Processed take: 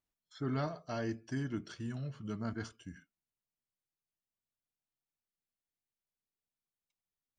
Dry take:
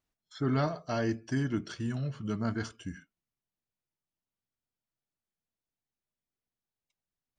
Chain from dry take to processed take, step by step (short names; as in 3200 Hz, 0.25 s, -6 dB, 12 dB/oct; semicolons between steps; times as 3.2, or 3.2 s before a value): 2.53–2.96 three-band expander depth 40%; gain -6.5 dB